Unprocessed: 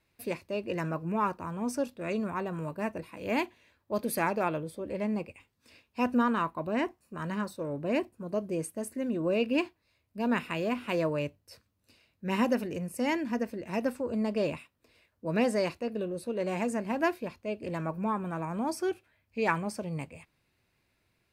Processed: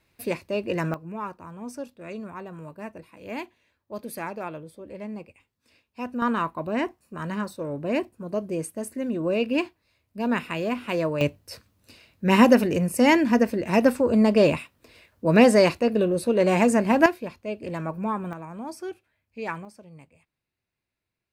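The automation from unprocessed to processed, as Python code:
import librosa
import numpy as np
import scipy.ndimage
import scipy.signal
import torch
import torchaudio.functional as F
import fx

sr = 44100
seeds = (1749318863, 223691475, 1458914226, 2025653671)

y = fx.gain(x, sr, db=fx.steps((0.0, 6.0), (0.94, -4.5), (6.22, 3.5), (11.21, 11.5), (17.06, 3.0), (18.33, -4.0), (19.65, -12.0)))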